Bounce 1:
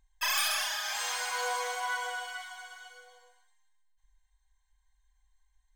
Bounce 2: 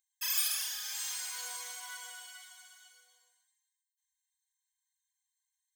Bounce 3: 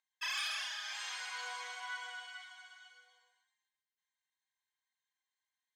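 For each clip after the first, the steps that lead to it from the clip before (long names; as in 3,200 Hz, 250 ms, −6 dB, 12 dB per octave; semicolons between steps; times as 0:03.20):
first difference
band-pass filter 520–2,800 Hz; level +5.5 dB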